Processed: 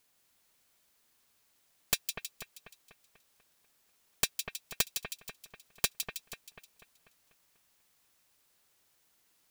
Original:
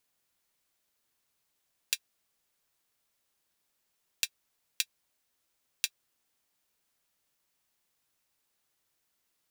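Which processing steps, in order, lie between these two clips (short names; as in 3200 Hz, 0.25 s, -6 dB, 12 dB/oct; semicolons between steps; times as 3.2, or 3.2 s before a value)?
wrapped overs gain 21.5 dB; split-band echo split 2600 Hz, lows 0.245 s, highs 0.159 s, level -6.5 dB; gain +6 dB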